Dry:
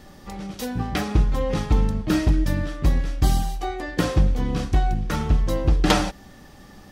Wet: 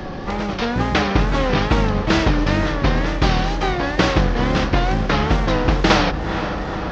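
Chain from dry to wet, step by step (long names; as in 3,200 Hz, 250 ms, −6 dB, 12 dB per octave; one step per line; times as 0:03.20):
variable-slope delta modulation 32 kbit/s
low-pass filter 1,000 Hz 6 dB per octave
tape wow and flutter 98 cents
on a send: feedback delay with all-pass diffusion 477 ms, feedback 58%, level −15.5 dB
on the sum: every bin compressed towards the loudest bin 2 to 1
level +6 dB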